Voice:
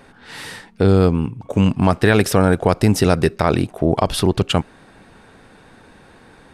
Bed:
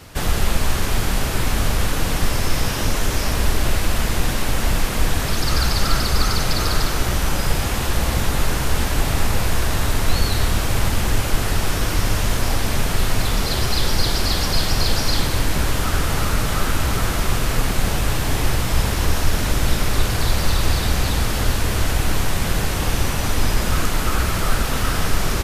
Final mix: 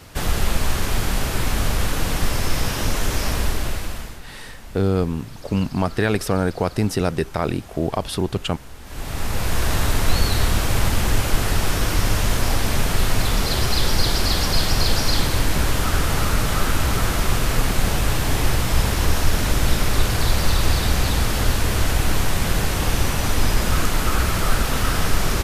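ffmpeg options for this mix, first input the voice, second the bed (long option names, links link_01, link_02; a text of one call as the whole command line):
ffmpeg -i stem1.wav -i stem2.wav -filter_complex "[0:a]adelay=3950,volume=-6dB[link_01];[1:a]volume=19dB,afade=type=out:start_time=3.3:duration=0.91:silence=0.112202,afade=type=in:start_time=8.83:duration=0.88:silence=0.0944061[link_02];[link_01][link_02]amix=inputs=2:normalize=0" out.wav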